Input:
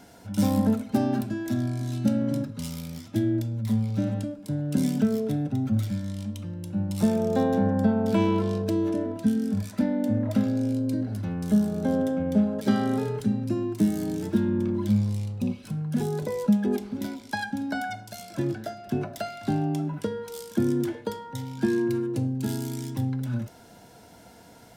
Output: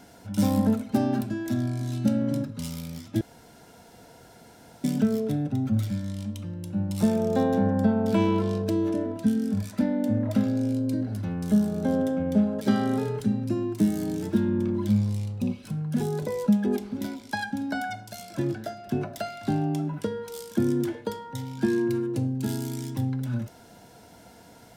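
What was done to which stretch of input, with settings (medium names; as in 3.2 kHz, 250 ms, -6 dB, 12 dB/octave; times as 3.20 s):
3.21–4.84 s: room tone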